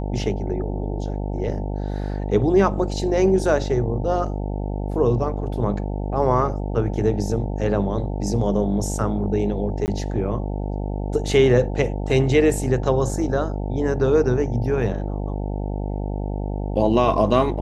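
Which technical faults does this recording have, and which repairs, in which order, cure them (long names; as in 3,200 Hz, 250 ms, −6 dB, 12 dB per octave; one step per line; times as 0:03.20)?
mains buzz 50 Hz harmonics 18 −26 dBFS
0:09.86–0:09.88: drop-out 19 ms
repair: hum removal 50 Hz, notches 18
repair the gap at 0:09.86, 19 ms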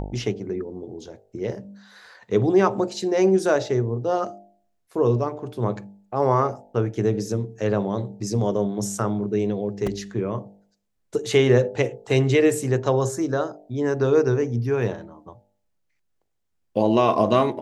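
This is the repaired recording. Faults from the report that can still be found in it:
none of them is left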